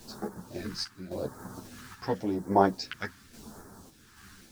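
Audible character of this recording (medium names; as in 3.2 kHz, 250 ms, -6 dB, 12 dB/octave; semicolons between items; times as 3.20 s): a quantiser's noise floor 10-bit, dither none; phasing stages 2, 0.89 Hz, lowest notch 530–2700 Hz; random-step tremolo 3.6 Hz, depth 75%; a shimmering, thickened sound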